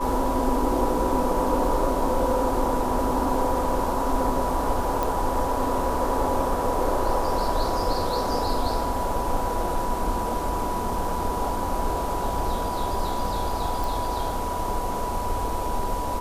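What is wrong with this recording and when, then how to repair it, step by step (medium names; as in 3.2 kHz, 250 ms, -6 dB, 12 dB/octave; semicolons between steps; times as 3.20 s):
whine 980 Hz -29 dBFS
5.03 s: pop
13.84 s: pop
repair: de-click; band-stop 980 Hz, Q 30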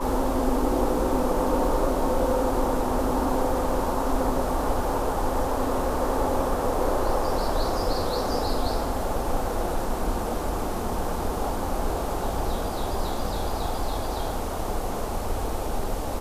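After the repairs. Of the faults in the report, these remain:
nothing left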